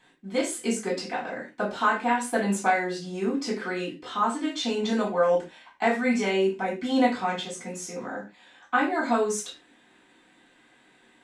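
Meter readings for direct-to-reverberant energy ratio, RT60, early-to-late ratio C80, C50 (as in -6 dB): -6.0 dB, no single decay rate, 15.0 dB, 8.5 dB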